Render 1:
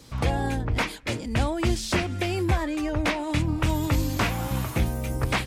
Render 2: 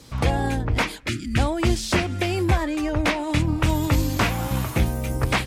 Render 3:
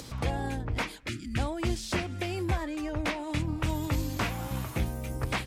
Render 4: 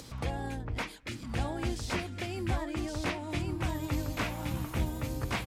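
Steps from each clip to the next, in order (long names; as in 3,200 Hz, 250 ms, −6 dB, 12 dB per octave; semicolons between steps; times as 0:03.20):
gain on a spectral selection 0:01.08–0:01.37, 400–1,200 Hz −27 dB; harmonic generator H 7 −36 dB, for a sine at −10.5 dBFS; level +3.5 dB
upward compression, threshold −25 dBFS; level −9 dB
single-tap delay 1,115 ms −3.5 dB; level −4 dB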